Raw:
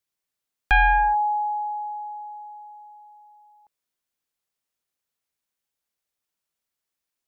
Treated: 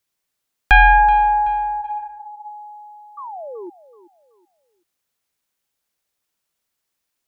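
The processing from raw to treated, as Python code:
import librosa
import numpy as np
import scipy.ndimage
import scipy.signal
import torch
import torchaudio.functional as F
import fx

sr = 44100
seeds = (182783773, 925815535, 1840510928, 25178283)

y = fx.spec_paint(x, sr, seeds[0], shape='fall', start_s=3.17, length_s=0.53, low_hz=330.0, high_hz=1200.0, level_db=-39.0)
y = fx.echo_feedback(y, sr, ms=378, feedback_pct=32, wet_db=-16.0)
y = fx.ensemble(y, sr, at=(1.81, 2.48), fade=0.02)
y = F.gain(torch.from_numpy(y), 7.0).numpy()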